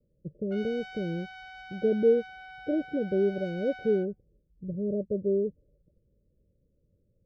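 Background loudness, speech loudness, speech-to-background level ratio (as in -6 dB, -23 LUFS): -45.0 LUFS, -29.5 LUFS, 15.5 dB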